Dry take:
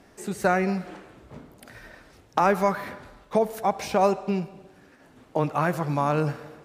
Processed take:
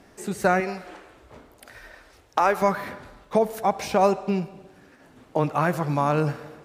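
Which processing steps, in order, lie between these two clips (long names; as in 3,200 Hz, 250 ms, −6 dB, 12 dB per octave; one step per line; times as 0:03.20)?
0:00.60–0:02.62: parametric band 170 Hz −13 dB 1.4 octaves
level +1.5 dB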